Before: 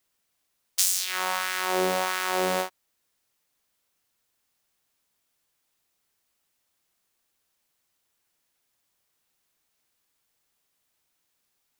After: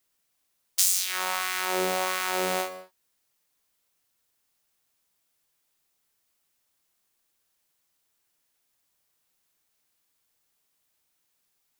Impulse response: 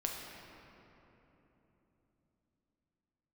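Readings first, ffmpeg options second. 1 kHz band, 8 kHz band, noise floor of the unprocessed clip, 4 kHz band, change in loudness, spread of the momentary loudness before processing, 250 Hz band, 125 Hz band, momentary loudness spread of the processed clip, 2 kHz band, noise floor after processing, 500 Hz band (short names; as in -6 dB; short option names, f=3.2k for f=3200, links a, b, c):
-1.5 dB, +1.0 dB, -76 dBFS, -0.5 dB, -0.5 dB, 7 LU, -2.5 dB, n/a, 10 LU, -1.0 dB, -75 dBFS, -2.0 dB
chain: -filter_complex "[0:a]asplit=2[a][b];[1:a]atrim=start_sample=2205,afade=t=out:st=0.27:d=0.01,atrim=end_sample=12348,highshelf=f=5.2k:g=8.5[c];[b][c]afir=irnorm=-1:irlink=0,volume=-7dB[d];[a][d]amix=inputs=2:normalize=0,volume=-4.5dB"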